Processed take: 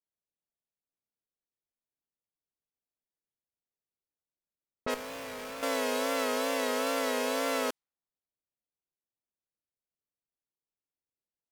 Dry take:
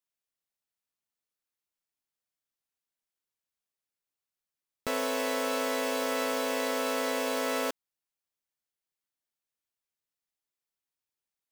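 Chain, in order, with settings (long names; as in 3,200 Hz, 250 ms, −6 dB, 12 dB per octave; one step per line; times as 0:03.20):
low-pass that shuts in the quiet parts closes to 620 Hz, open at −28.5 dBFS
0:04.94–0:05.63: tube saturation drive 39 dB, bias 0.8
tape wow and flutter 64 cents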